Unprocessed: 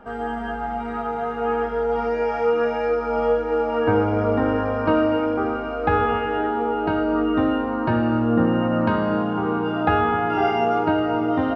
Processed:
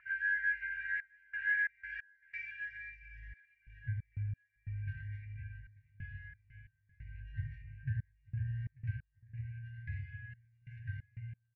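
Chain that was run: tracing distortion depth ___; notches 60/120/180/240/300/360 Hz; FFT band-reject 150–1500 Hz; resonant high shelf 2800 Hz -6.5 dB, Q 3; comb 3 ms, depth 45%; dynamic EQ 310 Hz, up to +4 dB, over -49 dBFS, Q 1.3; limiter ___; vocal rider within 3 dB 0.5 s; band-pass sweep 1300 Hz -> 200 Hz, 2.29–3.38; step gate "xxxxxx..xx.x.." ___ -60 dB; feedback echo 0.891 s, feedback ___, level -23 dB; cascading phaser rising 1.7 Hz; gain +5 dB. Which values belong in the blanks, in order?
0.095 ms, -14 dBFS, 90 bpm, 34%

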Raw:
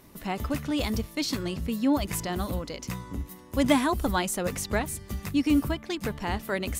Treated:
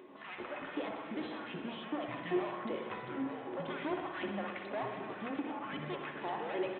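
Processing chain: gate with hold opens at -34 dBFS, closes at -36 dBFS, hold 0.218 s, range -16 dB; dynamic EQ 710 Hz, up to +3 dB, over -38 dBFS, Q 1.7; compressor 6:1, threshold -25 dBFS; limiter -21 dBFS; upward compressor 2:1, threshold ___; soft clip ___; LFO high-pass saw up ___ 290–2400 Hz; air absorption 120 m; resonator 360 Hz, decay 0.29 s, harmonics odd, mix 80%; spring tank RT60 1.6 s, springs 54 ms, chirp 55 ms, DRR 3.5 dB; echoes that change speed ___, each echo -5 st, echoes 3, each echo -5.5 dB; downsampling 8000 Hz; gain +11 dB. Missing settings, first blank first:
-37 dBFS, -35.5 dBFS, 2.6 Hz, 83 ms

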